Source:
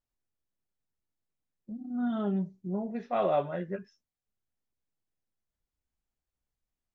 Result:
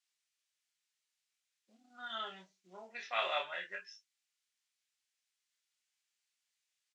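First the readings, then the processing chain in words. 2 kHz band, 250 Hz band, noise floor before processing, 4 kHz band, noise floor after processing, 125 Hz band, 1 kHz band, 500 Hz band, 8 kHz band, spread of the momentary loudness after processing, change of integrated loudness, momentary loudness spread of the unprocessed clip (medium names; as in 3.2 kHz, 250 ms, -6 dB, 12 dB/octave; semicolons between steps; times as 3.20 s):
+7.5 dB, -31.0 dB, under -85 dBFS, +12.0 dB, under -85 dBFS, under -30 dB, -6.0 dB, -13.0 dB, no reading, 22 LU, -7.5 dB, 12 LU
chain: Butterworth band-pass 4.3 kHz, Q 0.65; doubling 27 ms -4 dB; trim +10.5 dB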